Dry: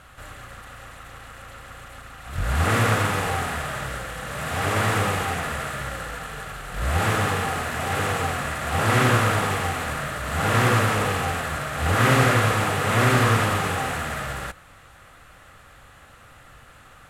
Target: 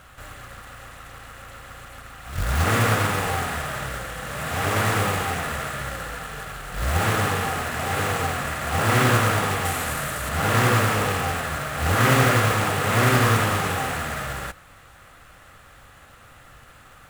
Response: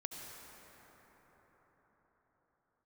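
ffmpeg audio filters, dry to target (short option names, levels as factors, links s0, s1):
-filter_complex "[0:a]asettb=1/sr,asplit=3[s0][s1][s2];[s0]atrim=end=9.654[s3];[s1]atrim=start=9.65:end=10.29,asetpts=PTS-STARTPTS,afade=t=in:d=0.004:c=qsin,afade=t=out:st=0.636:d=0.004:c=qsin,highshelf=f=7100:g=12[s4];[s2]atrim=start=10.286[s5];[s3][s4]acrossfade=d=0.004:c1=hsin:c2=qsin[s6];[s6][s5]acrossfade=d=0.004:c1=qsin:c2=hsin,acrusher=bits=3:mode=log:mix=0:aa=0.000001"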